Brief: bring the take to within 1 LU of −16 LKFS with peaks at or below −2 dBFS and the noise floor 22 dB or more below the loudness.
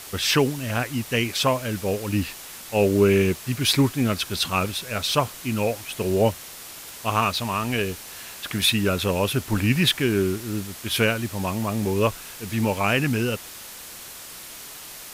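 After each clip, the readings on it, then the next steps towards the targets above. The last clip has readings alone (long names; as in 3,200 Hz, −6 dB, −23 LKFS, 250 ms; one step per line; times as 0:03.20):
background noise floor −40 dBFS; target noise floor −46 dBFS; integrated loudness −23.5 LKFS; sample peak −7.0 dBFS; target loudness −16.0 LKFS
→ broadband denoise 6 dB, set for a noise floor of −40 dBFS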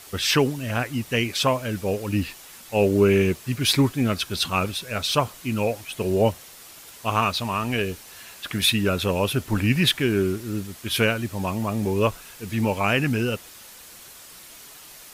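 background noise floor −45 dBFS; target noise floor −46 dBFS
→ broadband denoise 6 dB, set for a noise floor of −45 dBFS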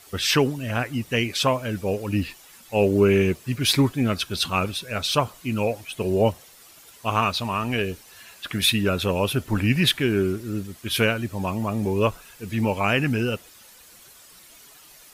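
background noise floor −50 dBFS; integrated loudness −23.5 LKFS; sample peak −7.0 dBFS; target loudness −16.0 LKFS
→ level +7.5 dB
brickwall limiter −2 dBFS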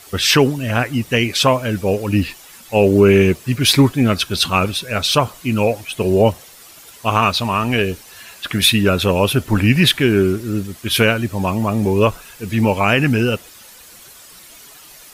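integrated loudness −16.5 LKFS; sample peak −2.0 dBFS; background noise floor −42 dBFS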